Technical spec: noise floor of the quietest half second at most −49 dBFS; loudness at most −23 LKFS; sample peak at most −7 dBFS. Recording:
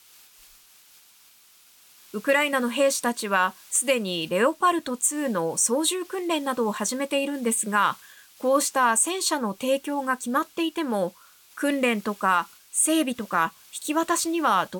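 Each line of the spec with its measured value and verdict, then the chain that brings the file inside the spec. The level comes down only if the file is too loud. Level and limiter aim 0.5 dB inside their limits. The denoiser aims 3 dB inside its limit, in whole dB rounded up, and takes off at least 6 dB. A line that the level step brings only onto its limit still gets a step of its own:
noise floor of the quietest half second −56 dBFS: in spec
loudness −24.0 LKFS: in spec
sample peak −10.5 dBFS: in spec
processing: no processing needed

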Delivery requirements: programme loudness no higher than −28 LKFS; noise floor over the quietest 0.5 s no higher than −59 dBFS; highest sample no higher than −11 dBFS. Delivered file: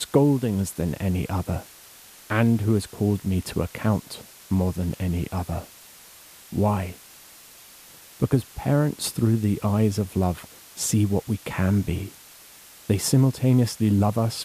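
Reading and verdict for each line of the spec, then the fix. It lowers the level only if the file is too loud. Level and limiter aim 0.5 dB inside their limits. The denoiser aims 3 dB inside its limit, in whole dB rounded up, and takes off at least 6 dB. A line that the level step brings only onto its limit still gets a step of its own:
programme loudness −24.0 LKFS: out of spec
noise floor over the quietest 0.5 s −48 dBFS: out of spec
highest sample −6.5 dBFS: out of spec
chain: broadband denoise 10 dB, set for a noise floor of −48 dBFS
level −4.5 dB
brickwall limiter −11.5 dBFS

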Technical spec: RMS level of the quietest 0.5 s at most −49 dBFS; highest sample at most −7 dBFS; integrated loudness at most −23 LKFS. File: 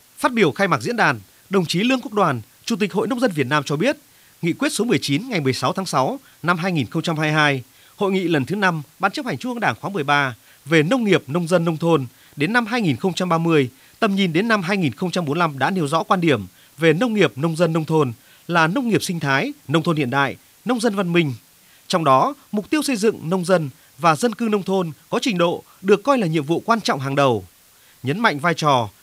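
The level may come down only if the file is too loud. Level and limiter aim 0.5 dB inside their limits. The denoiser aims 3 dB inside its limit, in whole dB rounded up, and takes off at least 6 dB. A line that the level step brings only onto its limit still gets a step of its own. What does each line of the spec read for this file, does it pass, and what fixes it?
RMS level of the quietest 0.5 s −52 dBFS: in spec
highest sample −2.5 dBFS: out of spec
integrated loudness −20.0 LKFS: out of spec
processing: level −3.5 dB
brickwall limiter −7.5 dBFS

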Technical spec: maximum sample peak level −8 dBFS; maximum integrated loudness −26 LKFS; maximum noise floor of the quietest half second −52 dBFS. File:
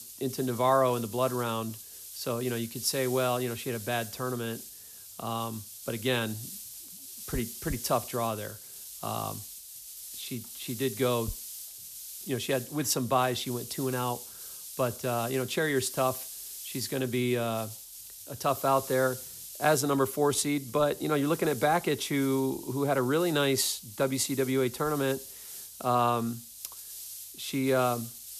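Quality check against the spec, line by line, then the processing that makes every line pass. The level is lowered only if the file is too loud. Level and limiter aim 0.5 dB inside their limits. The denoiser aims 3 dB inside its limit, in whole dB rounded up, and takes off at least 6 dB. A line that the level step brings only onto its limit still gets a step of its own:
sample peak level −13.0 dBFS: in spec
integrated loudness −30.0 LKFS: in spec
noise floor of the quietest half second −48 dBFS: out of spec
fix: broadband denoise 7 dB, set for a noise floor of −48 dBFS

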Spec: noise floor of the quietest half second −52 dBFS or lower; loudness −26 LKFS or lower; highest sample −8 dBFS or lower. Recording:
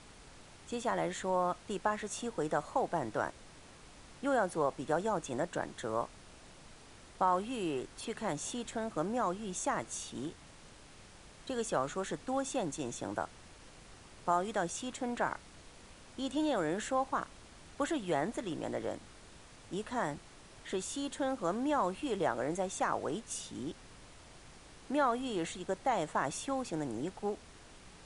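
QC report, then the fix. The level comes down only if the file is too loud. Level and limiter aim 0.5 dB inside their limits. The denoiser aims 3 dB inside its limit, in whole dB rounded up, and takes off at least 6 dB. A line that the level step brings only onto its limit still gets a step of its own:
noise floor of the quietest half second −55 dBFS: in spec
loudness −36.0 LKFS: in spec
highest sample −16.5 dBFS: in spec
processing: no processing needed

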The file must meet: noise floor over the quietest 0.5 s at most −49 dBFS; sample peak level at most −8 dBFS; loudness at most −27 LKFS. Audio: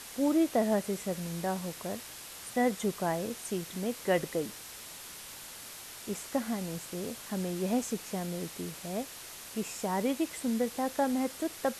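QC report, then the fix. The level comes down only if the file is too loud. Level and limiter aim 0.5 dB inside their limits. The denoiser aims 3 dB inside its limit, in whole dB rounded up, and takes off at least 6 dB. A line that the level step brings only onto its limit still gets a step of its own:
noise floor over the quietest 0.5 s −46 dBFS: out of spec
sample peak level −15.5 dBFS: in spec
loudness −33.5 LKFS: in spec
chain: broadband denoise 6 dB, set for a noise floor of −46 dBFS

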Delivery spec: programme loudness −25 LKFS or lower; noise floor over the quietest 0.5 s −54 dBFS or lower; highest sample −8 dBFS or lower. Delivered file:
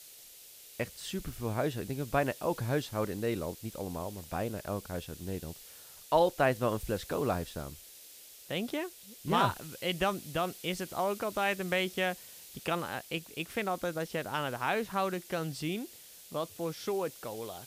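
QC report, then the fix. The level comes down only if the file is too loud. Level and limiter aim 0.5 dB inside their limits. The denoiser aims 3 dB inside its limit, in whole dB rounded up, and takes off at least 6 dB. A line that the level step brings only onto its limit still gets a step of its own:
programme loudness −34.0 LKFS: in spec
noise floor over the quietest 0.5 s −53 dBFS: out of spec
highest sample −13.5 dBFS: in spec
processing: broadband denoise 6 dB, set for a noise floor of −53 dBFS

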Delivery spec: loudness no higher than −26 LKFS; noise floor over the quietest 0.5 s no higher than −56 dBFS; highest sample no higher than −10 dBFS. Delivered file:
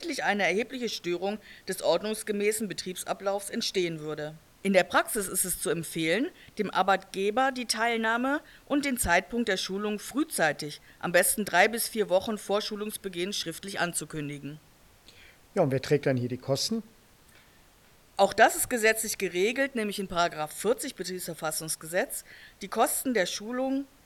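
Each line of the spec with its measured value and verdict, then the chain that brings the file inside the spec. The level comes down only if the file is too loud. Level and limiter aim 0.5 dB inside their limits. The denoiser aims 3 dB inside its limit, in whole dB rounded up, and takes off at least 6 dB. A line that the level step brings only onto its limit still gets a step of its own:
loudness −28.0 LKFS: in spec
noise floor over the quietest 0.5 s −59 dBFS: in spec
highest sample −7.0 dBFS: out of spec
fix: brickwall limiter −10.5 dBFS

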